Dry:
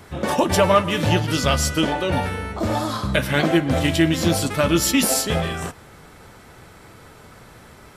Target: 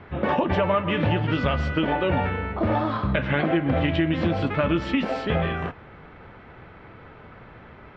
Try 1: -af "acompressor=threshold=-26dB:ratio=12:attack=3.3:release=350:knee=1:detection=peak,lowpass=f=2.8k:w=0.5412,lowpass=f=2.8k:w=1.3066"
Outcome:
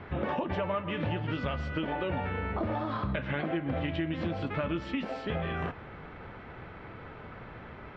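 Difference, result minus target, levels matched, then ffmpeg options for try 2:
compressor: peak gain reduction +9.5 dB
-af "acompressor=threshold=-15.5dB:ratio=12:attack=3.3:release=350:knee=1:detection=peak,lowpass=f=2.8k:w=0.5412,lowpass=f=2.8k:w=1.3066"

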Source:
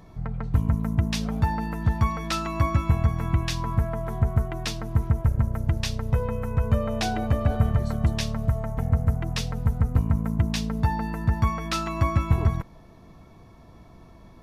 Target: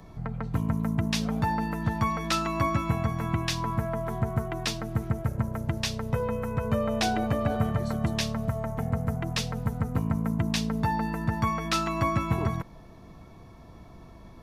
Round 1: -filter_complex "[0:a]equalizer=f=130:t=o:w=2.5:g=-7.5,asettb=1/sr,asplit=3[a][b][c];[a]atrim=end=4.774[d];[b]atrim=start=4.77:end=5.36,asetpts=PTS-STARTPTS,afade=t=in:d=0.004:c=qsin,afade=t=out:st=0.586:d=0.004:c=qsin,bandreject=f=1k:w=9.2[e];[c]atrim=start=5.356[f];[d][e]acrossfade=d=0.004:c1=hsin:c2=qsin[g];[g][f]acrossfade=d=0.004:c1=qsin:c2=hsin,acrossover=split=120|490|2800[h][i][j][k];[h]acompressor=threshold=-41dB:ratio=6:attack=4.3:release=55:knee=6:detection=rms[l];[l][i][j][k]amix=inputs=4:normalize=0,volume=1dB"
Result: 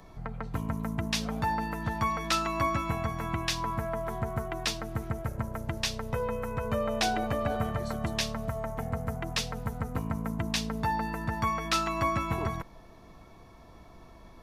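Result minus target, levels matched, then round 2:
125 Hz band -3.0 dB
-filter_complex "[0:a]asettb=1/sr,asplit=3[a][b][c];[a]atrim=end=4.774[d];[b]atrim=start=4.77:end=5.36,asetpts=PTS-STARTPTS,afade=t=in:d=0.004:c=qsin,afade=t=out:st=0.586:d=0.004:c=qsin,bandreject=f=1k:w=9.2[e];[c]atrim=start=5.356[f];[d][e]acrossfade=d=0.004:c1=hsin:c2=qsin[g];[g][f]acrossfade=d=0.004:c1=qsin:c2=hsin,acrossover=split=120|490|2800[h][i][j][k];[h]acompressor=threshold=-41dB:ratio=6:attack=4.3:release=55:knee=6:detection=rms[l];[l][i][j][k]amix=inputs=4:normalize=0,volume=1dB"

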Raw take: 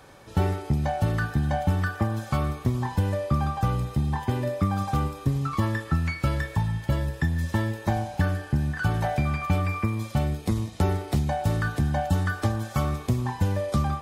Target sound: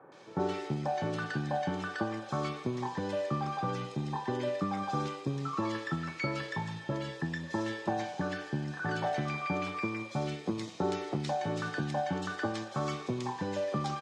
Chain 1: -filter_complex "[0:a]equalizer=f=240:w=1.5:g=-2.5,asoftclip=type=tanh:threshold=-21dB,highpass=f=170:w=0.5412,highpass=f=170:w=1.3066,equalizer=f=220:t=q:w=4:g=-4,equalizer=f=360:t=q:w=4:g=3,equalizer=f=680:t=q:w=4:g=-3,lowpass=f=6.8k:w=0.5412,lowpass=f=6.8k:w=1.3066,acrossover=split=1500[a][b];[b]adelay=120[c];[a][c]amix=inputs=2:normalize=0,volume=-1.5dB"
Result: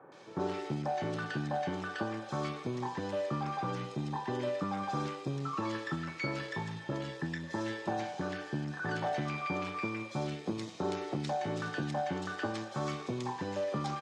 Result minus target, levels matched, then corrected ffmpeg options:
soft clip: distortion +14 dB
-filter_complex "[0:a]equalizer=f=240:w=1.5:g=-2.5,asoftclip=type=tanh:threshold=-11.5dB,highpass=f=170:w=0.5412,highpass=f=170:w=1.3066,equalizer=f=220:t=q:w=4:g=-4,equalizer=f=360:t=q:w=4:g=3,equalizer=f=680:t=q:w=4:g=-3,lowpass=f=6.8k:w=0.5412,lowpass=f=6.8k:w=1.3066,acrossover=split=1500[a][b];[b]adelay=120[c];[a][c]amix=inputs=2:normalize=0,volume=-1.5dB"

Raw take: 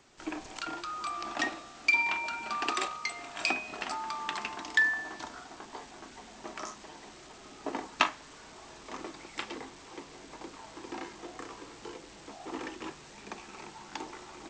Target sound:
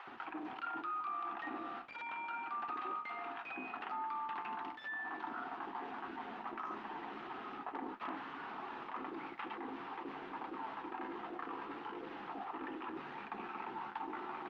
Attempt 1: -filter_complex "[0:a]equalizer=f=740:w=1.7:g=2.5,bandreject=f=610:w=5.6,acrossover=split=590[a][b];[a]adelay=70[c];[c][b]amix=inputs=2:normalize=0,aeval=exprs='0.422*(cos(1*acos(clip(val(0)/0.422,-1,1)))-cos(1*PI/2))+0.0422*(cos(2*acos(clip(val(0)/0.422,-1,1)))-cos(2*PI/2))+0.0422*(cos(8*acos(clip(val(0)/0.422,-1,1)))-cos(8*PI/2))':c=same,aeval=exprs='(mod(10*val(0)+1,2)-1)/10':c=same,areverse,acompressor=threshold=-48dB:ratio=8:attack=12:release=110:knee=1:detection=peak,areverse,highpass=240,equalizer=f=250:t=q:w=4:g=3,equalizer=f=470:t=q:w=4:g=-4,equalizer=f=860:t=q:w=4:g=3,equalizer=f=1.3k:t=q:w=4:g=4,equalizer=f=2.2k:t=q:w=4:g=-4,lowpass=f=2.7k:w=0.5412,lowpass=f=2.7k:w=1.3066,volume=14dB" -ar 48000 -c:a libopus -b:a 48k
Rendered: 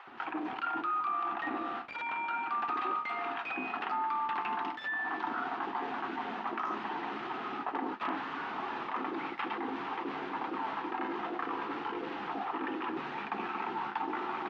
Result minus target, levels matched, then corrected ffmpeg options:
compressor: peak gain reduction -7.5 dB
-filter_complex "[0:a]equalizer=f=740:w=1.7:g=2.5,bandreject=f=610:w=5.6,acrossover=split=590[a][b];[a]adelay=70[c];[c][b]amix=inputs=2:normalize=0,aeval=exprs='0.422*(cos(1*acos(clip(val(0)/0.422,-1,1)))-cos(1*PI/2))+0.0422*(cos(2*acos(clip(val(0)/0.422,-1,1)))-cos(2*PI/2))+0.0422*(cos(8*acos(clip(val(0)/0.422,-1,1)))-cos(8*PI/2))':c=same,aeval=exprs='(mod(10*val(0)+1,2)-1)/10':c=same,areverse,acompressor=threshold=-56.5dB:ratio=8:attack=12:release=110:knee=1:detection=peak,areverse,highpass=240,equalizer=f=250:t=q:w=4:g=3,equalizer=f=470:t=q:w=4:g=-4,equalizer=f=860:t=q:w=4:g=3,equalizer=f=1.3k:t=q:w=4:g=4,equalizer=f=2.2k:t=q:w=4:g=-4,lowpass=f=2.7k:w=0.5412,lowpass=f=2.7k:w=1.3066,volume=14dB" -ar 48000 -c:a libopus -b:a 48k

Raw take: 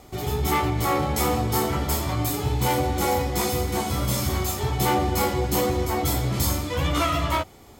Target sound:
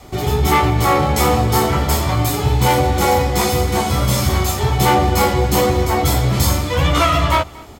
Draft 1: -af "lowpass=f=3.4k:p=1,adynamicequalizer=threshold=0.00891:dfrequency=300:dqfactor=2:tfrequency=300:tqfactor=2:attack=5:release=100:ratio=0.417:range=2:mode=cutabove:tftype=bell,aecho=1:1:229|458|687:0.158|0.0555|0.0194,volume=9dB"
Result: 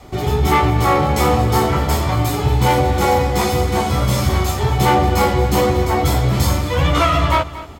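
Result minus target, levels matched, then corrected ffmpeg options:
echo-to-direct +7.5 dB; 8000 Hz band -4.0 dB
-af "lowpass=f=7.4k:p=1,adynamicequalizer=threshold=0.00891:dfrequency=300:dqfactor=2:tfrequency=300:tqfactor=2:attack=5:release=100:ratio=0.417:range=2:mode=cutabove:tftype=bell,aecho=1:1:229|458:0.0668|0.0234,volume=9dB"

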